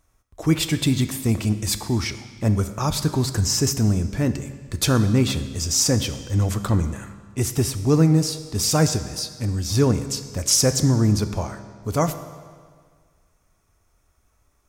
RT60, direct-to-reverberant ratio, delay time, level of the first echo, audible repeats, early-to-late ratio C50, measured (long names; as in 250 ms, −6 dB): 1.8 s, 10.0 dB, no echo audible, no echo audible, no echo audible, 11.5 dB